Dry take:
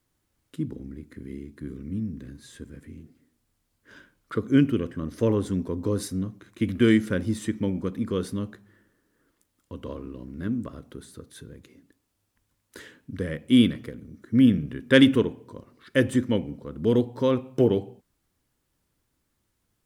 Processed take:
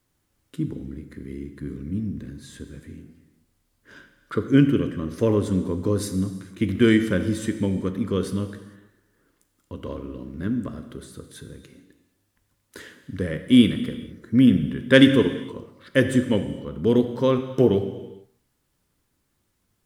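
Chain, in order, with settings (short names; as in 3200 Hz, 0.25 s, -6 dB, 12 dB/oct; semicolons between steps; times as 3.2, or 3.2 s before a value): non-linear reverb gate 0.48 s falling, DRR 8 dB; gain +2.5 dB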